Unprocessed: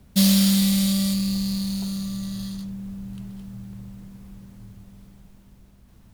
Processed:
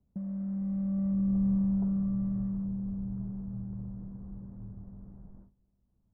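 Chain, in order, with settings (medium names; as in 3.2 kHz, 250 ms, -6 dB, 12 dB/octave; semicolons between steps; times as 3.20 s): gate with hold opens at -39 dBFS; compressor with a negative ratio -25 dBFS, ratio -1; Gaussian low-pass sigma 8.4 samples; trim -3.5 dB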